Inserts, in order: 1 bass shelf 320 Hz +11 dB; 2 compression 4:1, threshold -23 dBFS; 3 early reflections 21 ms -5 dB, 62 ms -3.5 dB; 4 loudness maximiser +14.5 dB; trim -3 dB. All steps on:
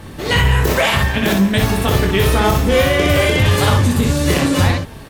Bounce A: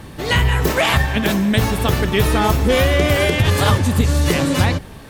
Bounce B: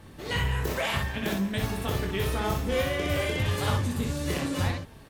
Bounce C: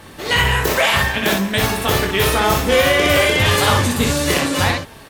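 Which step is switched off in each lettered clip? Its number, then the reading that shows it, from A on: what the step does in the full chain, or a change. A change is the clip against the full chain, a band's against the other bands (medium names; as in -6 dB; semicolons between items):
3, crest factor change +1.5 dB; 4, crest factor change +3.5 dB; 1, 125 Hz band -8.0 dB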